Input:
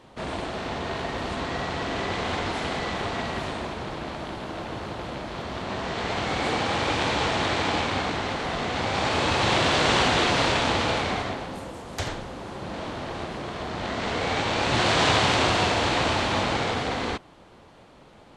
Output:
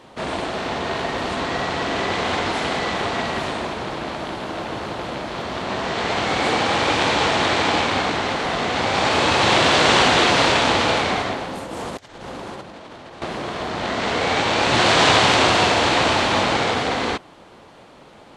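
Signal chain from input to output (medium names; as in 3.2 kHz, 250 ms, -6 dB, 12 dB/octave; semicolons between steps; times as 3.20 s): 11.66–13.22 s: compressor with a negative ratio -39 dBFS, ratio -0.5; bass shelf 120 Hz -9.5 dB; trim +6.5 dB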